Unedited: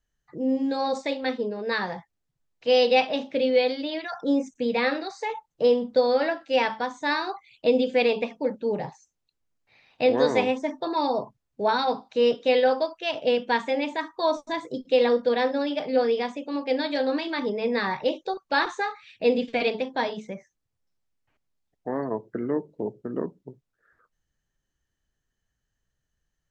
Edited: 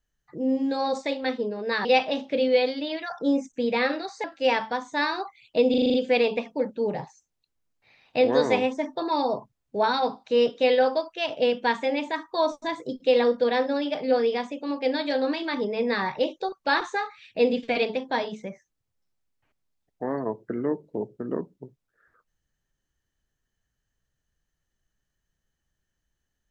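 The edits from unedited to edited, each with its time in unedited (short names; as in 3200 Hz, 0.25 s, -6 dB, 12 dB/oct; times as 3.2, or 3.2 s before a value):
1.85–2.87 cut
5.26–6.33 cut
7.79 stutter 0.04 s, 7 plays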